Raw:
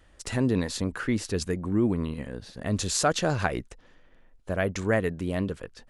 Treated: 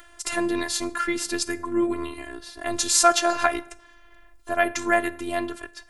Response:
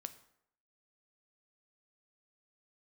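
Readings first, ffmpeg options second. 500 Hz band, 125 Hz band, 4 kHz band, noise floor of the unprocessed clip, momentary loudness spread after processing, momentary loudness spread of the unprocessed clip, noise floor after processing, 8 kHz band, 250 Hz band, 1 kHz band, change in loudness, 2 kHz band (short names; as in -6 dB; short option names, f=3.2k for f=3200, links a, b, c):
+2.5 dB, -17.0 dB, +6.5 dB, -58 dBFS, 15 LU, 9 LU, -52 dBFS, +8.5 dB, -0.5 dB, +9.0 dB, +4.0 dB, +6.5 dB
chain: -filter_complex "[0:a]asplit=2[a][b];[1:a]atrim=start_sample=2205,asetrate=48510,aresample=44100[c];[b][c]afir=irnorm=-1:irlink=0,volume=9.5dB[d];[a][d]amix=inputs=2:normalize=0,afftfilt=real='hypot(re,im)*cos(PI*b)':imag='0':win_size=512:overlap=0.75,crystalizer=i=2.5:c=0,equalizer=f=1.2k:t=o:w=2.4:g=10,acompressor=mode=upward:threshold=-35dB:ratio=2.5,volume=-7.5dB"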